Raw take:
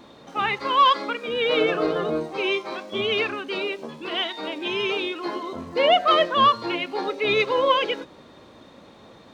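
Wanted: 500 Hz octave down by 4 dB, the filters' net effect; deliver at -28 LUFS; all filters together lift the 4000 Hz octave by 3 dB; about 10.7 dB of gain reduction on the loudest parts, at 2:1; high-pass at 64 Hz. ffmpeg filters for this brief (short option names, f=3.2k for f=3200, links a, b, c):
-af "highpass=64,equalizer=f=500:t=o:g=-5,equalizer=f=4k:t=o:g=4.5,acompressor=threshold=-34dB:ratio=2,volume=3dB"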